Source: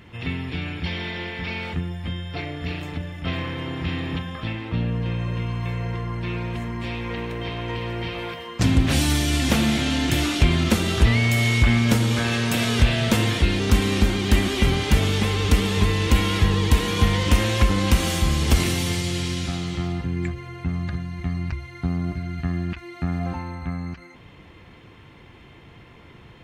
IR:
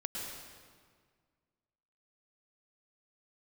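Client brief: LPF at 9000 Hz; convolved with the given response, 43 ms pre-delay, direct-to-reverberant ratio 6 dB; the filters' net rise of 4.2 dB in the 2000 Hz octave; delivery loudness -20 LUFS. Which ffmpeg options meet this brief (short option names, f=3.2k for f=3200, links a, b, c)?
-filter_complex "[0:a]lowpass=9k,equalizer=f=2k:t=o:g=5,asplit=2[a][b];[1:a]atrim=start_sample=2205,adelay=43[c];[b][c]afir=irnorm=-1:irlink=0,volume=-8dB[d];[a][d]amix=inputs=2:normalize=0,volume=1dB"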